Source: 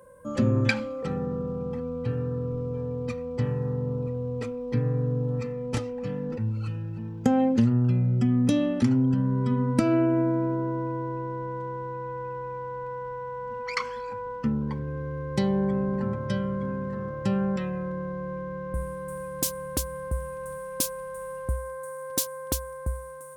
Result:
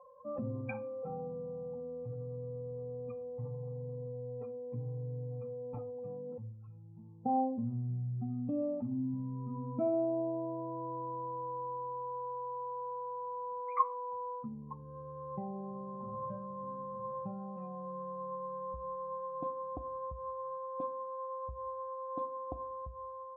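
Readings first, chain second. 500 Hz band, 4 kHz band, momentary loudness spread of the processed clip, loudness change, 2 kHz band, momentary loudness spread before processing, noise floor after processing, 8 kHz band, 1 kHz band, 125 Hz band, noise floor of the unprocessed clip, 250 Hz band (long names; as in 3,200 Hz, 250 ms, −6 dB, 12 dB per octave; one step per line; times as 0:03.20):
−8.0 dB, below −40 dB, 9 LU, −11.0 dB, below −20 dB, 12 LU, −48 dBFS, below −40 dB, −2.0 dB, −15.0 dB, −37 dBFS, −14.5 dB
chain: expanding power law on the bin magnitudes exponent 1.8
formant resonators in series a
rectangular room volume 400 cubic metres, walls furnished, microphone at 0.48 metres
level +11.5 dB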